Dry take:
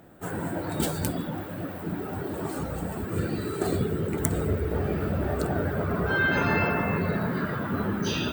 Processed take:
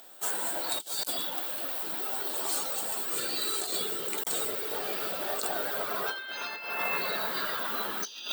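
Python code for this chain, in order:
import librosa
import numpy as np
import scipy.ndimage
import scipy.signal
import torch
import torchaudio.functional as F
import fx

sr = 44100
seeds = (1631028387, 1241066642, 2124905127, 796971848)

y = scipy.signal.sosfilt(scipy.signal.butter(2, 750.0, 'highpass', fs=sr, output='sos'), x)
y = fx.high_shelf_res(y, sr, hz=2700.0, db=10.5, q=1.5)
y = fx.over_compress(y, sr, threshold_db=-31.0, ratio=-0.5)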